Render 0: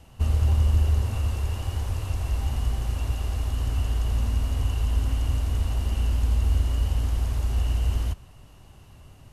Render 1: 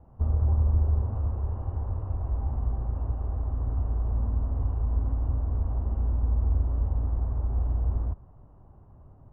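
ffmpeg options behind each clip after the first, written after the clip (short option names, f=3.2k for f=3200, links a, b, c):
-af "lowpass=f=1.1k:w=0.5412,lowpass=f=1.1k:w=1.3066,volume=-2.5dB"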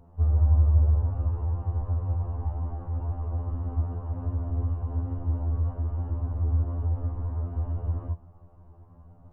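-af "afftfilt=real='re*2*eq(mod(b,4),0)':imag='im*2*eq(mod(b,4),0)':win_size=2048:overlap=0.75,volume=3dB"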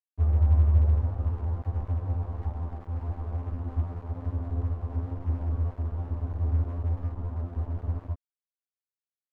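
-af "aeval=exprs='sgn(val(0))*max(abs(val(0))-0.01,0)':c=same"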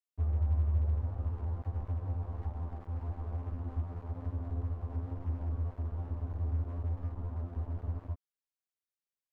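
-af "acompressor=threshold=-30dB:ratio=1.5,volume=-4dB"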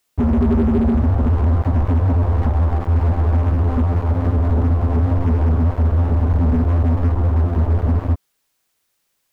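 -af "aeval=exprs='0.0944*sin(PI/2*3.98*val(0)/0.0944)':c=same,volume=9dB"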